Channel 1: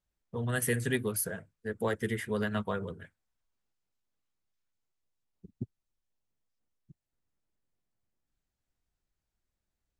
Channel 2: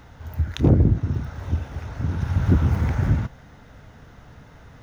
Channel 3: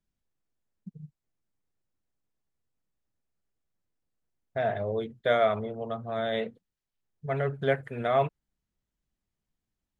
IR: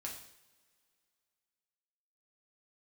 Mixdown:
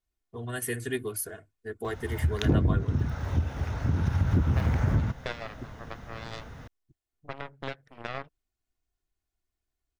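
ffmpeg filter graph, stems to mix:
-filter_complex "[0:a]aecho=1:1:2.8:0.78,volume=-3.5dB[a];[1:a]acompressor=threshold=-24dB:ratio=3,adelay=1850,volume=1.5dB[b];[2:a]acompressor=threshold=-30dB:ratio=4,aeval=exprs='0.158*(cos(1*acos(clip(val(0)/0.158,-1,1)))-cos(1*PI/2))+0.0282*(cos(3*acos(clip(val(0)/0.158,-1,1)))-cos(3*PI/2))+0.0126*(cos(4*acos(clip(val(0)/0.158,-1,1)))-cos(4*PI/2))+0.0141*(cos(7*acos(clip(val(0)/0.158,-1,1)))-cos(7*PI/2))':c=same,volume=2.5dB[c];[a][b][c]amix=inputs=3:normalize=0"

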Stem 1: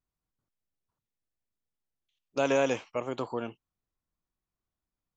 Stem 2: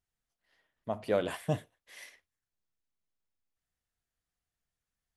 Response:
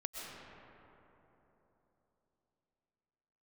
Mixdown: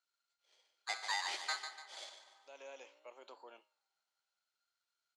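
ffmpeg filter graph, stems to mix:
-filter_complex "[0:a]flanger=delay=9.5:depth=9:regen=89:speed=0.57:shape=sinusoidal,adelay=100,volume=-9.5dB[a];[1:a]acompressor=threshold=-29dB:ratio=6,aeval=exprs='val(0)*sgn(sin(2*PI*1400*n/s))':c=same,volume=0dB,asplit=4[b][c][d][e];[c]volume=-15.5dB[f];[d]volume=-10.5dB[g];[e]apad=whole_len=232146[h];[a][h]sidechaincompress=threshold=-52dB:ratio=8:attack=16:release=1080[i];[2:a]atrim=start_sample=2205[j];[f][j]afir=irnorm=-1:irlink=0[k];[g]aecho=0:1:146|292|438|584|730|876:1|0.4|0.16|0.064|0.0256|0.0102[l];[i][b][k][l]amix=inputs=4:normalize=0,asoftclip=type=tanh:threshold=-28.5dB,highpass=f=460:w=0.5412,highpass=f=460:w=1.3066,equalizer=f=460:t=q:w=4:g=-7,equalizer=f=700:t=q:w=4:g=-4,equalizer=f=1.2k:t=q:w=4:g=-6,equalizer=f=1.7k:t=q:w=4:g=-4,equalizer=f=4.3k:t=q:w=4:g=4,lowpass=f=7.6k:w=0.5412,lowpass=f=7.6k:w=1.3066"

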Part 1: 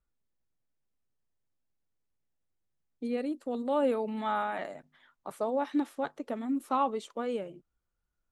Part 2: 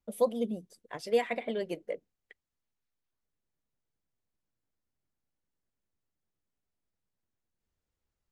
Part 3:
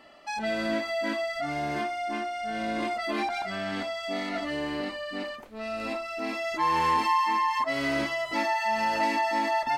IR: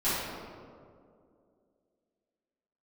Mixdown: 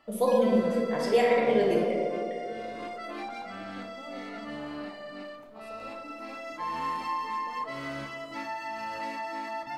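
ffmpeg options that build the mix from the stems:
-filter_complex "[0:a]acompressor=threshold=-39dB:ratio=6,adelay=300,volume=-10dB,asplit=2[a][b];[b]volume=-13dB[c];[1:a]volume=-1dB,asplit=2[d][e];[e]volume=-4dB[f];[2:a]equalizer=f=125:t=o:w=0.33:g=11,equalizer=f=400:t=o:w=0.33:g=-4,equalizer=f=1.25k:t=o:w=0.33:g=6,volume=-11dB,asplit=2[g][h];[h]volume=-18dB[i];[3:a]atrim=start_sample=2205[j];[c][f][i]amix=inputs=3:normalize=0[k];[k][j]afir=irnorm=-1:irlink=0[l];[a][d][g][l]amix=inputs=4:normalize=0"

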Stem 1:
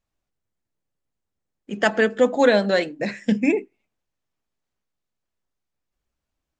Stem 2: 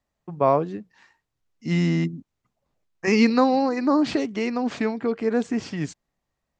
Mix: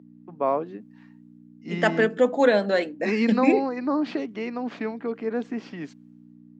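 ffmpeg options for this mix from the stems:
-filter_complex "[0:a]highshelf=f=3.8k:g=-7.5,dynaudnorm=f=110:g=9:m=15dB,aeval=exprs='val(0)+0.0282*(sin(2*PI*60*n/s)+sin(2*PI*2*60*n/s)/2+sin(2*PI*3*60*n/s)/3+sin(2*PI*4*60*n/s)/4+sin(2*PI*5*60*n/s)/5)':c=same,volume=-7dB[a];[1:a]lowpass=3.5k,volume=-4.5dB[b];[a][b]amix=inputs=2:normalize=0,highpass=f=200:w=0.5412,highpass=f=200:w=1.3066"

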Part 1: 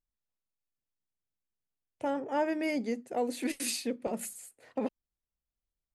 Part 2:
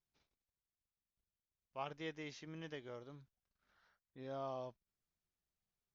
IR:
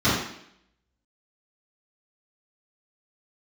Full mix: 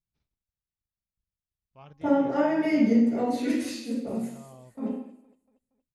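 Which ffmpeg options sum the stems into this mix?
-filter_complex "[0:a]agate=range=-33dB:threshold=-50dB:ratio=3:detection=peak,aphaser=in_gain=1:out_gain=1:delay=2.1:decay=0.3:speed=1:type=sinusoidal,volume=-10dB,afade=t=out:st=3.48:d=0.27:silence=0.375837,asplit=3[a][b][c];[b]volume=-4dB[d];[c]volume=-6.5dB[e];[1:a]bass=f=250:g=14,treble=f=4k:g=-1,bandreject=f=270.1:t=h:w=4,bandreject=f=540.2:t=h:w=4,bandreject=f=810.3:t=h:w=4,bandreject=f=1.0804k:t=h:w=4,volume=-7.5dB[f];[2:a]atrim=start_sample=2205[g];[d][g]afir=irnorm=-1:irlink=0[h];[e]aecho=0:1:234|468|702|936|1170|1404:1|0.46|0.212|0.0973|0.0448|0.0206[i];[a][f][h][i]amix=inputs=4:normalize=0"

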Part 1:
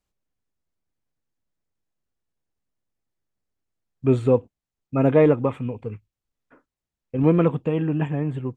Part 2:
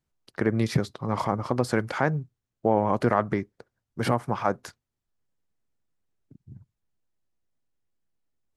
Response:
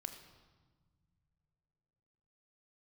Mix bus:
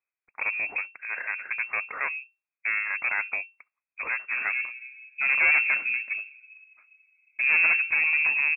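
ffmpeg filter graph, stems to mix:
-filter_complex "[0:a]agate=range=-33dB:threshold=-47dB:ratio=3:detection=peak,adelay=250,volume=3dB,asplit=2[a][b];[b]volume=-10dB[c];[1:a]highpass=f=160:w=0.5412,highpass=f=160:w=1.3066,volume=0dB,asplit=2[d][e];[e]apad=whole_len=393047[f];[a][f]sidechaincompress=threshold=-39dB:ratio=8:attack=23:release=792[g];[2:a]atrim=start_sample=2205[h];[c][h]afir=irnorm=-1:irlink=0[i];[g][d][i]amix=inputs=3:normalize=0,bandreject=f=940:w=12,aeval=exprs='(tanh(8.91*val(0)+0.7)-tanh(0.7))/8.91':c=same,lowpass=f=2.3k:t=q:w=0.5098,lowpass=f=2.3k:t=q:w=0.6013,lowpass=f=2.3k:t=q:w=0.9,lowpass=f=2.3k:t=q:w=2.563,afreqshift=-2700"

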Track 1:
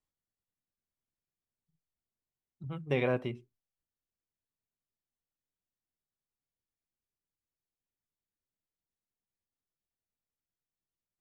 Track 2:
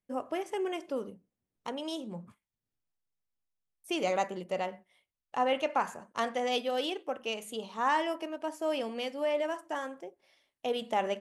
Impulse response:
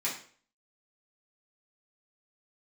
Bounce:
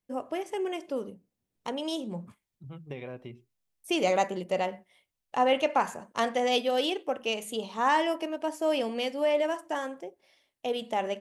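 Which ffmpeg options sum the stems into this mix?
-filter_complex "[0:a]acompressor=threshold=-33dB:ratio=4,volume=-7dB[a];[1:a]volume=1.5dB[b];[a][b]amix=inputs=2:normalize=0,equalizer=f=1.3k:w=1.8:g=-3.5,dynaudnorm=f=260:g=11:m=3.5dB"

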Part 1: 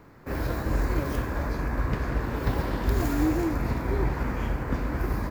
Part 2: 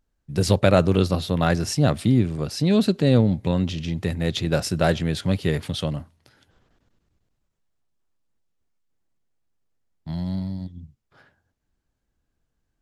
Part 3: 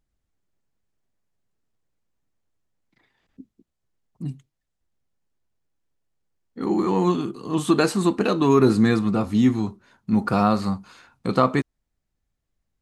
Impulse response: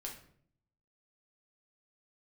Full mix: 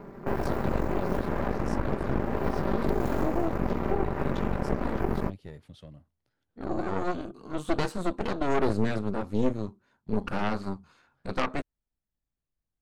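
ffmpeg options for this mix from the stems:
-filter_complex "[0:a]equalizer=f=340:w=0.39:g=10,aecho=1:1:5.1:0.69,acompressor=threshold=-30dB:ratio=3,volume=1.5dB[a];[1:a]volume=-19dB[b];[2:a]volume=-8dB[c];[a][b][c]amix=inputs=3:normalize=0,highshelf=f=2.1k:g=-6,aeval=exprs='0.251*(cos(1*acos(clip(val(0)/0.251,-1,1)))-cos(1*PI/2))+0.0562*(cos(3*acos(clip(val(0)/0.251,-1,1)))-cos(3*PI/2))+0.0562*(cos(4*acos(clip(val(0)/0.251,-1,1)))-cos(4*PI/2))+0.0224*(cos(5*acos(clip(val(0)/0.251,-1,1)))-cos(5*PI/2))+0.0224*(cos(8*acos(clip(val(0)/0.251,-1,1)))-cos(8*PI/2))':c=same"

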